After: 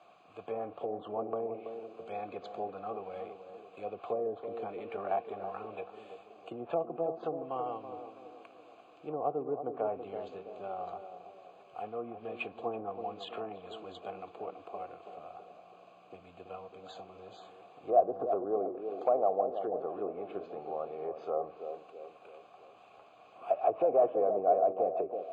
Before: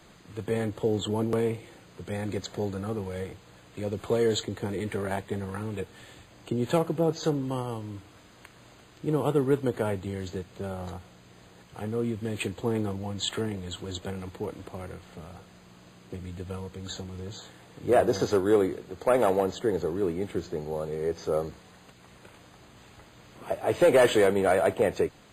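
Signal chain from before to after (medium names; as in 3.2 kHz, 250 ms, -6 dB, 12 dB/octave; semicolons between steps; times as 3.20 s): low-pass that closes with the level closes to 590 Hz, closed at -21 dBFS; vowel filter a; band-passed feedback delay 329 ms, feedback 53%, band-pass 360 Hz, level -6.5 dB; trim +7 dB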